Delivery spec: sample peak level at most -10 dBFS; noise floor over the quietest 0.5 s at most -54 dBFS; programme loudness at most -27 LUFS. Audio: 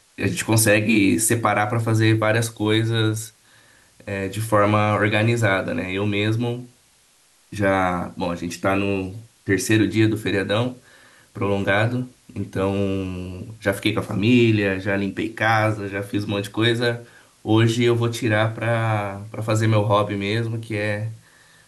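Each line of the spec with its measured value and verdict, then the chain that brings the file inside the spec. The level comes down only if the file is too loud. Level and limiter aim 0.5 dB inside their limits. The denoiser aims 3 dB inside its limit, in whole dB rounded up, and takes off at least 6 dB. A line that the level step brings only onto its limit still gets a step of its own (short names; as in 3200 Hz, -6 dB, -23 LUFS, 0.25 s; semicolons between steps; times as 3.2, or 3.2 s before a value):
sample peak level -6.0 dBFS: fail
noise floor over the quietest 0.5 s -57 dBFS: OK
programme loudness -21.0 LUFS: fail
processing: gain -6.5 dB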